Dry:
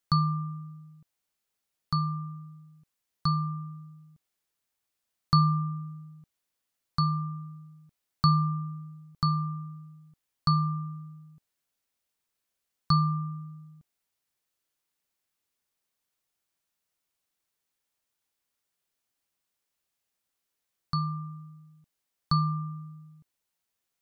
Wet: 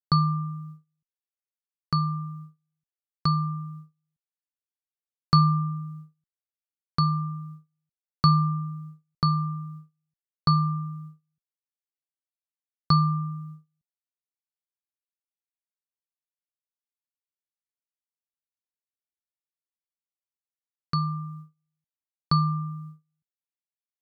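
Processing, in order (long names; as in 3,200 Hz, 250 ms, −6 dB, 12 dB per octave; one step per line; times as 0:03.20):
noise gate −44 dBFS, range −32 dB
harmonic generator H 2 −43 dB, 3 −35 dB, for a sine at −9.5 dBFS
level +3.5 dB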